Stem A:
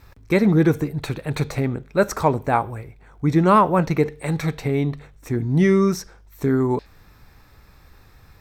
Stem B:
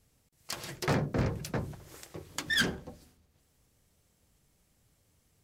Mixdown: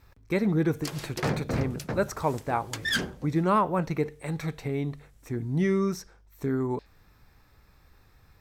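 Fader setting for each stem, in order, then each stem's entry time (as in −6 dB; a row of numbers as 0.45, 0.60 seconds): −8.5, +0.5 decibels; 0.00, 0.35 seconds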